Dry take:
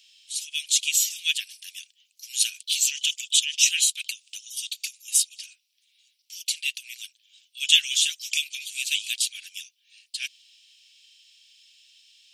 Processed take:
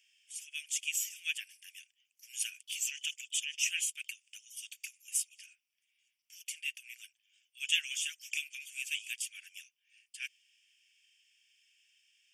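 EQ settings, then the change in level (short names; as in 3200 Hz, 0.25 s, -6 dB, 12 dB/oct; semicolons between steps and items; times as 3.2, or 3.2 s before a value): high shelf 4400 Hz -9 dB; fixed phaser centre 1700 Hz, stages 4; -2.0 dB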